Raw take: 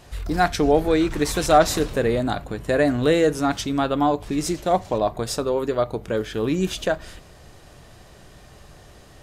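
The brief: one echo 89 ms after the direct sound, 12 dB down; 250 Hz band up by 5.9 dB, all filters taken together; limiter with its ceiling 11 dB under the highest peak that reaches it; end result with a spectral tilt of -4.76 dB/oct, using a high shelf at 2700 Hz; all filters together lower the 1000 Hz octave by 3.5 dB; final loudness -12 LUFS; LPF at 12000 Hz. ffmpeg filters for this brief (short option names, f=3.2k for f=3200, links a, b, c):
-af "lowpass=12k,equalizer=f=250:t=o:g=8,equalizer=f=1k:t=o:g=-7.5,highshelf=f=2.7k:g=5.5,alimiter=limit=-14dB:level=0:latency=1,aecho=1:1:89:0.251,volume=11dB"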